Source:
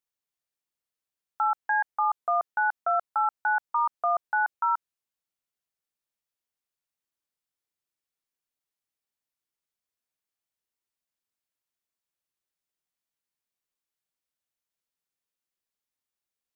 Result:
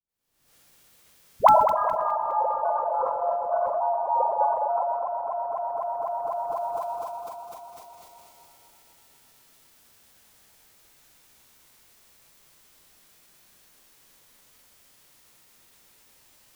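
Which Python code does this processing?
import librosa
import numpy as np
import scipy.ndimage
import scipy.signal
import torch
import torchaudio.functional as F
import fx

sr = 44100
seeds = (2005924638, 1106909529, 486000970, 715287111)

p1 = fx.reverse_delay_fb(x, sr, ms=125, feedback_pct=78, wet_db=-3.5)
p2 = fx.recorder_agc(p1, sr, target_db=-19.5, rise_db_per_s=65.0, max_gain_db=30)
p3 = fx.low_shelf(p2, sr, hz=390.0, db=5.0)
p4 = fx.hum_notches(p3, sr, base_hz=60, count=6)
p5 = fx.dispersion(p4, sr, late='highs', ms=88.0, hz=580.0)
p6 = fx.formant_shift(p5, sr, semitones=-5)
p7 = p6 + fx.echo_feedback(p6, sr, ms=206, feedback_pct=57, wet_db=-8.5, dry=0)
p8 = fx.sustainer(p7, sr, db_per_s=42.0)
y = p8 * 10.0 ** (-2.0 / 20.0)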